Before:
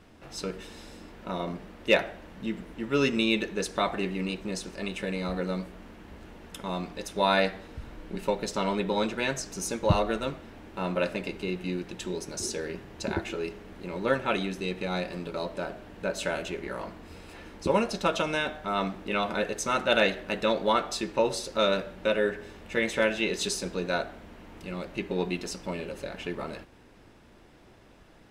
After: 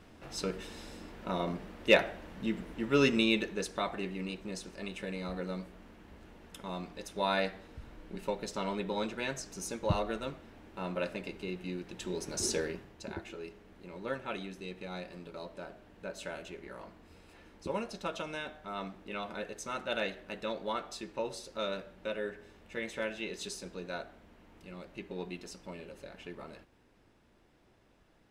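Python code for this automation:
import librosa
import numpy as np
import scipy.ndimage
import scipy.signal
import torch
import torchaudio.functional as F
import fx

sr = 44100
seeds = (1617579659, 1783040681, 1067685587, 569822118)

y = fx.gain(x, sr, db=fx.line((3.1, -1.0), (3.83, -7.0), (11.83, -7.0), (12.57, 1.5), (12.97, -11.0)))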